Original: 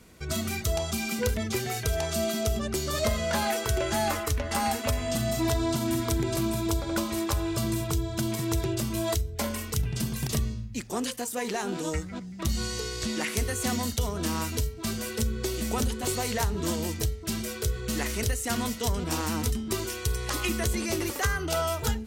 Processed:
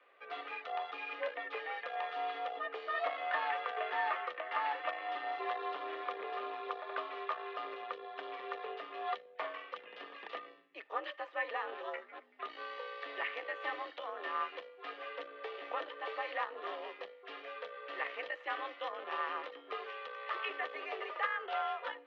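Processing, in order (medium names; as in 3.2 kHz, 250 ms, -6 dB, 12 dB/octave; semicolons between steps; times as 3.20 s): Chebyshev shaper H 6 -21 dB, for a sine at -11 dBFS; mistuned SSB +64 Hz 420–3100 Hz; small resonant body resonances 1.2/1.8 kHz, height 14 dB, ringing for 60 ms; trim -7.5 dB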